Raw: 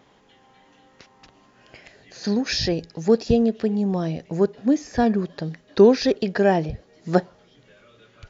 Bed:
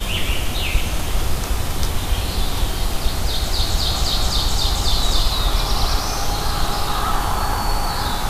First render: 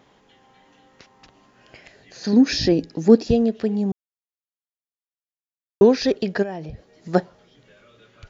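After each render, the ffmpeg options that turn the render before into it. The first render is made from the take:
ffmpeg -i in.wav -filter_complex "[0:a]asettb=1/sr,asplit=3[link_01][link_02][link_03];[link_01]atrim=end=2.334[link_04];[link_02]atrim=start=2.33:end=3.27,asetpts=PTS-STARTPTS,afade=type=in:duration=0.004:curve=qsin,afade=type=out:start_time=0.936:duration=0.004:curve=qsin,equalizer=frequency=280:width=2:gain=13[link_05];[link_03]atrim=start=3.266[link_06];[link_04][link_05]acrossfade=duration=0.004:curve1=hsin:curve2=qsin[link_07];[link_07][link_06]acrossfade=duration=0.004:curve1=qsin:curve2=hsin,asplit=3[link_08][link_09][link_10];[link_08]afade=type=out:start_time=6.42:duration=0.02[link_11];[link_09]acompressor=threshold=-32dB:ratio=3:attack=3.2:release=140:knee=1:detection=peak,afade=type=in:start_time=6.42:duration=0.02,afade=type=out:start_time=7.13:duration=0.02[link_12];[link_10]afade=type=in:start_time=7.13:duration=0.02[link_13];[link_11][link_12][link_13]amix=inputs=3:normalize=0,asplit=3[link_14][link_15][link_16];[link_14]atrim=end=3.92,asetpts=PTS-STARTPTS,afade=type=out:start_time=3.916:duration=0.004:curve=hsin[link_17];[link_15]atrim=start=3.92:end=5.81,asetpts=PTS-STARTPTS,volume=0[link_18];[link_16]atrim=start=5.81,asetpts=PTS-STARTPTS,afade=type=in:duration=0.004:curve=hsin[link_19];[link_17][link_18][link_19]concat=n=3:v=0:a=1" out.wav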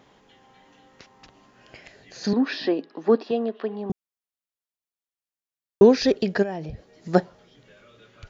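ffmpeg -i in.wav -filter_complex "[0:a]asettb=1/sr,asplit=3[link_01][link_02][link_03];[link_01]atrim=end=2.334[link_04];[link_02]atrim=start=2.33:end=3.9,asetpts=PTS-STARTPTS,afade=type=in:duration=0.004:curve=qsin,afade=type=out:start_time=1.566:duration=0.004:curve=qsin,highpass=frequency=290:width=0.5412,highpass=frequency=290:width=1.3066,equalizer=frequency=310:width_type=q:width=4:gain=-6,equalizer=frequency=490:width_type=q:width=4:gain=-5,equalizer=frequency=1100:width_type=q:width=4:gain=9,equalizer=frequency=2300:width_type=q:width=4:gain=-6,lowpass=frequency=3500:width=0.5412,lowpass=frequency=3500:width=1.3066[link_05];[link_03]atrim=start=3.896[link_06];[link_04][link_05]acrossfade=duration=0.004:curve1=hsin:curve2=qsin[link_07];[link_07][link_06]acrossfade=duration=0.004:curve1=qsin:curve2=hsin" out.wav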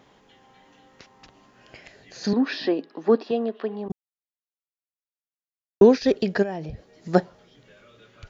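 ffmpeg -i in.wav -filter_complex "[0:a]asettb=1/sr,asplit=3[link_01][link_02][link_03];[link_01]atrim=end=3.884[link_04];[link_02]atrim=start=3.88:end=6.1,asetpts=PTS-STARTPTS,afade=type=in:duration=0.004:curve=qsin,afade=type=out:start_time=2.216:duration=0.004:curve=qsin,agate=range=-33dB:threshold=-22dB:ratio=3:release=100:detection=peak[link_05];[link_03]atrim=start=6.096[link_06];[link_04][link_05]acrossfade=duration=0.004:curve1=hsin:curve2=qsin[link_07];[link_07][link_06]acrossfade=duration=0.004:curve1=qsin:curve2=hsin" out.wav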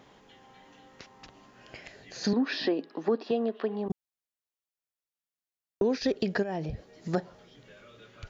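ffmpeg -i in.wav -af "alimiter=limit=-13.5dB:level=0:latency=1:release=126,acompressor=threshold=-26dB:ratio=2" out.wav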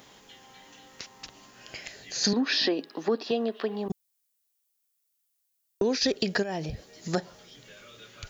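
ffmpeg -i in.wav -af "crystalizer=i=4.5:c=0" out.wav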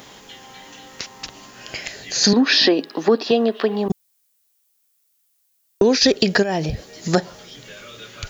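ffmpeg -i in.wav -af "volume=10.5dB,alimiter=limit=-2dB:level=0:latency=1" out.wav

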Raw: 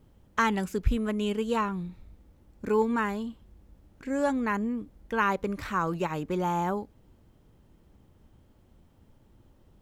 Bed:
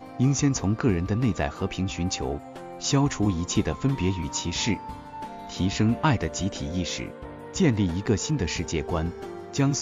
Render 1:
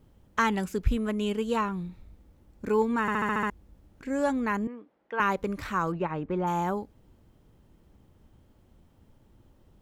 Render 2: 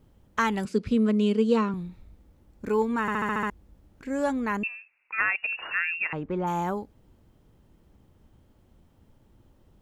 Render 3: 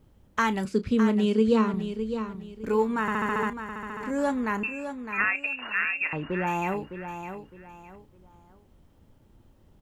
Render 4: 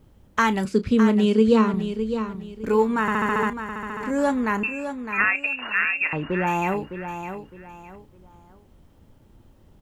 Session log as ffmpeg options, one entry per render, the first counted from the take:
ffmpeg -i in.wav -filter_complex "[0:a]asettb=1/sr,asplit=3[link_01][link_02][link_03];[link_01]atrim=end=4.674[link_04];[link_02]atrim=start=4.67:end=5.2,asetpts=PTS-STARTPTS,afade=type=in:duration=0.004:curve=qsin,afade=type=out:start_time=0.526:duration=0.004:curve=qsin,highpass=460,lowpass=2400[link_05];[link_03]atrim=start=5.196[link_06];[link_04][link_05]acrossfade=duration=0.004:curve1=hsin:curve2=qsin[link_07];[link_07][link_06]acrossfade=duration=0.004:curve1=qsin:curve2=hsin,asplit=3[link_08][link_09][link_10];[link_08]afade=type=out:start_time=5.91:duration=0.02[link_11];[link_09]lowpass=2100,afade=type=in:start_time=5.91:duration=0.02,afade=type=out:start_time=6.46:duration=0.02[link_12];[link_10]afade=type=in:start_time=6.46:duration=0.02[link_13];[link_11][link_12][link_13]amix=inputs=3:normalize=0,asplit=8[link_14][link_15][link_16][link_17][link_18][link_19][link_20][link_21];[link_14]atrim=end=3.082[link_22];[link_15]atrim=start=3.008:end=3.082[link_23];[link_16]atrim=start=3.008:end=3.082[link_24];[link_17]atrim=start=3.008:end=3.082[link_25];[link_18]atrim=start=3.008:end=3.082[link_26];[link_19]atrim=start=3.008:end=3.082[link_27];[link_20]atrim=start=3.008:end=3.082[link_28];[link_21]atrim=start=3.498[link_29];[link_22][link_23]acrossfade=duration=0.004:curve1=hsin:curve2=hsin[link_30];[link_30][link_24]acrossfade=duration=0.004:curve1=hsin:curve2=hsin[link_31];[link_31][link_25]acrossfade=duration=0.004:curve1=hsin:curve2=hsin[link_32];[link_32][link_26]acrossfade=duration=0.004:curve1=hsin:curve2=hsin[link_33];[link_33][link_27]acrossfade=duration=0.004:curve1=hsin:curve2=hsin[link_34];[link_34][link_28]acrossfade=duration=0.004:curve1=hsin:curve2=hsin[link_35];[link_35][link_29]acrossfade=duration=0.004:curve1=hsin:curve2=hsin" out.wav
ffmpeg -i in.wav -filter_complex "[0:a]asettb=1/sr,asplit=3[link_01][link_02][link_03];[link_01]atrim=end=0.654[link_04];[link_02]atrim=start=0.65:end=1.74,asetpts=PTS-STARTPTS,afade=type=in:duration=0.004:curve=qsin,afade=type=out:start_time=1.086:duration=0.004:curve=qsin,highpass=140,equalizer=frequency=220:width_type=q:width=4:gain=9,equalizer=frequency=460:width_type=q:width=4:gain=7,equalizer=frequency=820:width_type=q:width=4:gain=-5,equalizer=frequency=1700:width_type=q:width=4:gain=-3,equalizer=frequency=4600:width_type=q:width=4:gain=8,equalizer=frequency=6900:width_type=q:width=4:gain=-5,lowpass=frequency=9200:width=0.5412,lowpass=frequency=9200:width=1.3066[link_05];[link_03]atrim=start=1.736[link_06];[link_04][link_05]acrossfade=duration=0.004:curve1=hsin:curve2=qsin[link_07];[link_07][link_06]acrossfade=duration=0.004:curve1=qsin:curve2=hsin,asettb=1/sr,asplit=3[link_08][link_09][link_10];[link_08]atrim=end=4.634[link_11];[link_09]atrim=start=4.63:end=6.13,asetpts=PTS-STARTPTS,afade=type=in:duration=0.004:curve=qsin,afade=type=out:start_time=1.496:duration=0.004:curve=qsin,lowpass=frequency=2500:width_type=q:width=0.5098,lowpass=frequency=2500:width_type=q:width=0.6013,lowpass=frequency=2500:width_type=q:width=0.9,lowpass=frequency=2500:width_type=q:width=2.563,afreqshift=-2900[link_12];[link_10]atrim=start=6.126[link_13];[link_11][link_12]acrossfade=duration=0.004:curve1=hsin:curve2=qsin[link_14];[link_14][link_13]acrossfade=duration=0.004:curve1=qsin:curve2=hsin" out.wav
ffmpeg -i in.wav -filter_complex "[0:a]asplit=2[link_01][link_02];[link_02]adelay=32,volume=-13.5dB[link_03];[link_01][link_03]amix=inputs=2:normalize=0,aecho=1:1:609|1218|1827:0.355|0.106|0.0319" out.wav
ffmpeg -i in.wav -af "volume=4.5dB" out.wav

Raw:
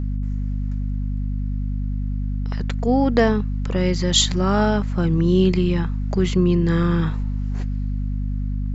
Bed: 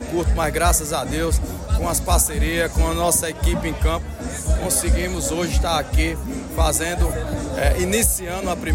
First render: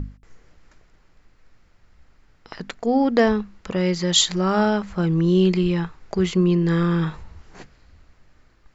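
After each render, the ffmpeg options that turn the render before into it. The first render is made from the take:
ffmpeg -i in.wav -af "bandreject=frequency=50:width_type=h:width=6,bandreject=frequency=100:width_type=h:width=6,bandreject=frequency=150:width_type=h:width=6,bandreject=frequency=200:width_type=h:width=6,bandreject=frequency=250:width_type=h:width=6" out.wav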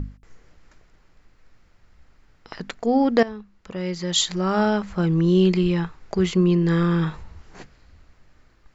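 ffmpeg -i in.wav -filter_complex "[0:a]asplit=2[link_01][link_02];[link_01]atrim=end=3.23,asetpts=PTS-STARTPTS,afade=type=out:start_time=3.226:duration=0.004:curve=hsin:silence=0.141254[link_03];[link_02]atrim=start=3.23,asetpts=PTS-STARTPTS,afade=type=in:duration=1.61:silence=0.141254[link_04];[link_03][link_04]concat=n=2:v=0:a=1" out.wav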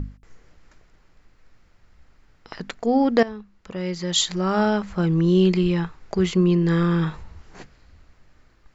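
ffmpeg -i in.wav -af anull out.wav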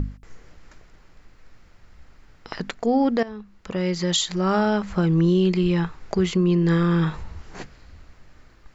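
ffmpeg -i in.wav -filter_complex "[0:a]asplit=2[link_01][link_02];[link_02]acompressor=threshold=-28dB:ratio=6,volume=-1.5dB[link_03];[link_01][link_03]amix=inputs=2:normalize=0,alimiter=limit=-11.5dB:level=0:latency=1:release=365" out.wav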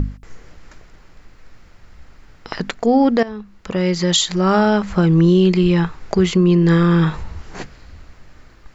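ffmpeg -i in.wav -af "volume=6dB" out.wav

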